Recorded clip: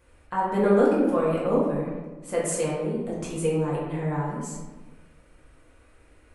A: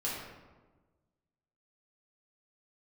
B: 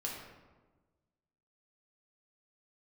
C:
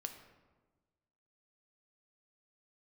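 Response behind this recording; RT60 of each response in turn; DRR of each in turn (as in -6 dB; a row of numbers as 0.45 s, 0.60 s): A; 1.3 s, 1.3 s, 1.3 s; -7.0 dB, -3.0 dB, 5.5 dB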